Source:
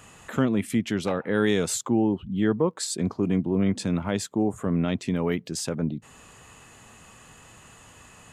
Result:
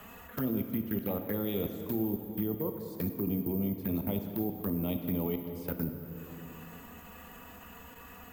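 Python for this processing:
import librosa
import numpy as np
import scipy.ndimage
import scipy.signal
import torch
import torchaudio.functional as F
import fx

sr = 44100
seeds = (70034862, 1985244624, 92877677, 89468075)

y = scipy.signal.sosfilt(scipy.signal.bessel(2, 7400.0, 'lowpass', norm='mag', fs=sr, output='sos'), x)
y = fx.peak_eq(y, sr, hz=75.0, db=11.0, octaves=0.31)
y = fx.hum_notches(y, sr, base_hz=60, count=10)
y = y + 10.0 ** (-14.0 / 20.0) * np.pad(y, (int(177 * sr / 1000.0), 0))[:len(y)]
y = (np.kron(scipy.signal.resample_poly(y, 1, 3), np.eye(3)[0]) * 3)[:len(y)]
y = fx.level_steps(y, sr, step_db=24)
y = fx.env_flanger(y, sr, rest_ms=5.2, full_db=-21.0)
y = fx.high_shelf(y, sr, hz=3400.0, db=-8.5)
y = fx.rev_plate(y, sr, seeds[0], rt60_s=2.7, hf_ratio=0.65, predelay_ms=0, drr_db=6.0)
y = fx.band_squash(y, sr, depth_pct=40)
y = y * librosa.db_to_amplitude(-2.5)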